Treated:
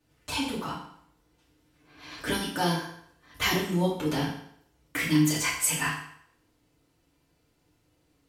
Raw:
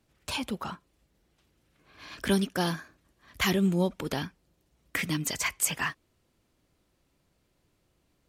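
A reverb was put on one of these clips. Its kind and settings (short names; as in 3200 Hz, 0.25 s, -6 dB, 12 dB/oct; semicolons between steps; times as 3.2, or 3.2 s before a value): FDN reverb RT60 0.68 s, low-frequency decay 0.85×, high-frequency decay 0.9×, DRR -7.5 dB; gain -5.5 dB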